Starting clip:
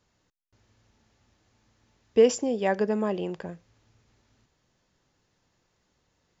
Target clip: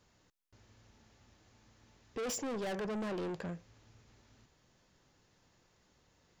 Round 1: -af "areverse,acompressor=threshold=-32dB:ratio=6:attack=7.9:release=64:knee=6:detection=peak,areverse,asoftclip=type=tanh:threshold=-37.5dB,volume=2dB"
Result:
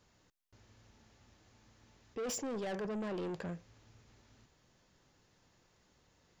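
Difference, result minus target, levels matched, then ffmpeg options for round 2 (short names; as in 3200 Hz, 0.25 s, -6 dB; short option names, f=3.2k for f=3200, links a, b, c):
compressor: peak gain reduction +6.5 dB
-af "areverse,acompressor=threshold=-24dB:ratio=6:attack=7.9:release=64:knee=6:detection=peak,areverse,asoftclip=type=tanh:threshold=-37.5dB,volume=2dB"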